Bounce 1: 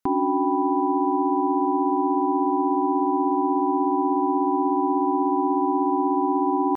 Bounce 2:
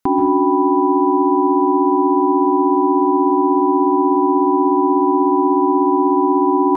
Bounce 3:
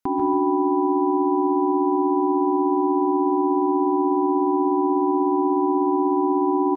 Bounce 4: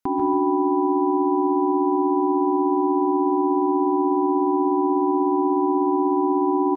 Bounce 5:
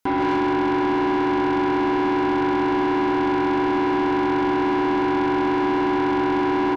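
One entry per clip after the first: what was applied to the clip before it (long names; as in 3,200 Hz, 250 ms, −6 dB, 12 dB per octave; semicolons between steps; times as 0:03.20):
dense smooth reverb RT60 0.72 s, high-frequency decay 0.75×, pre-delay 120 ms, DRR 5 dB; level +6.5 dB
repeating echo 143 ms, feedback 32%, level −9 dB; level −7.5 dB
no processing that can be heard
soft clipping −26 dBFS, distortion −8 dB; level +7.5 dB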